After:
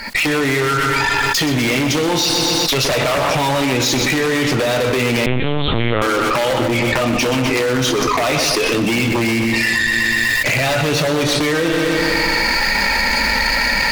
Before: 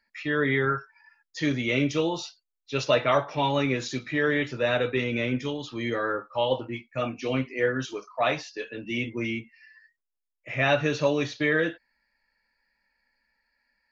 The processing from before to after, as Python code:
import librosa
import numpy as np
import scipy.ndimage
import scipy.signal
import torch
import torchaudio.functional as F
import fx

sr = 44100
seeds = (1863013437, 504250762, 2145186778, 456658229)

y = fx.recorder_agc(x, sr, target_db=-14.5, rise_db_per_s=75.0, max_gain_db=30)
y = fx.notch(y, sr, hz=1700.0, q=7.1)
y = 10.0 ** (-19.0 / 20.0) * (np.abs((y / 10.0 ** (-19.0 / 20.0) + 3.0) % 4.0 - 2.0) - 1.0)
y = fx.cheby_harmonics(y, sr, harmonics=(8,), levels_db=(-18,), full_scale_db=-19.0)
y = fx.echo_feedback(y, sr, ms=124, feedback_pct=60, wet_db=-10.5)
y = fx.lpc_vocoder(y, sr, seeds[0], excitation='pitch_kept', order=10, at=(5.26, 6.02))
y = fx.env_flatten(y, sr, amount_pct=100)
y = y * 10.0 ** (5.0 / 20.0)